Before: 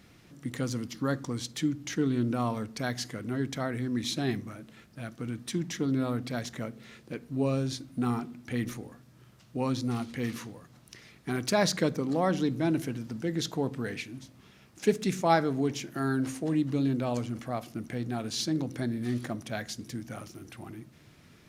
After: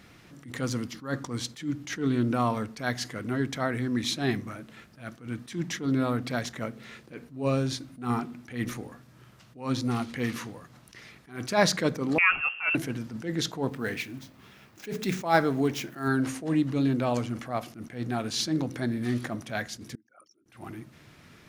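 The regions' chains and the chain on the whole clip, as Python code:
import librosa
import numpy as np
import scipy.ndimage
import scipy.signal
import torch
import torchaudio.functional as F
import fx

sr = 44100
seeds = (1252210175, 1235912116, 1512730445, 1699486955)

y = fx.chain(x, sr, fx.highpass(hz=380.0, slope=12),
    fx.peak_eq(hz=1700.0, db=10.5, octaves=0.34),
    fx.freq_invert(carrier_hz=3000), at=(12.18, 12.75))
y = fx.chain(y, sr, fx.median_filter(points=5),
    fx.high_shelf(hz=9800.0, db=11.0),
    fx.hum_notches(base_hz=60, count=3), at=(13.68, 16.08))
y = fx.chain(y, sr, fx.envelope_sharpen(power=3.0),
    fx.highpass(hz=1400.0, slope=12),
    fx.band_squash(depth_pct=40), at=(19.95, 20.46))
y = fx.peak_eq(y, sr, hz=1400.0, db=4.5, octaves=2.4)
y = fx.attack_slew(y, sr, db_per_s=160.0)
y = y * librosa.db_to_amplitude(2.0)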